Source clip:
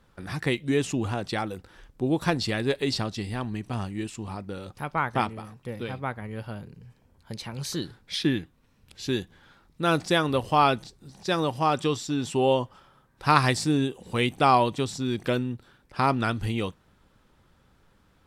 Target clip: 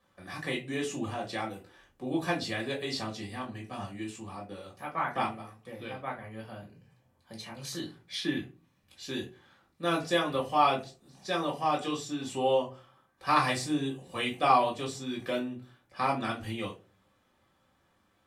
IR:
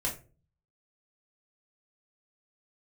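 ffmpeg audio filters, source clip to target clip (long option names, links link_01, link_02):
-filter_complex "[0:a]highpass=frequency=480:poles=1[link_01];[1:a]atrim=start_sample=2205,asetrate=48510,aresample=44100[link_02];[link_01][link_02]afir=irnorm=-1:irlink=0,volume=-7.5dB"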